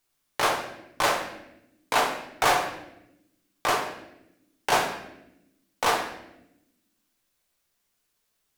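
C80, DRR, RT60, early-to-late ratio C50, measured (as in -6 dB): 9.5 dB, 1.5 dB, 0.90 s, 7.0 dB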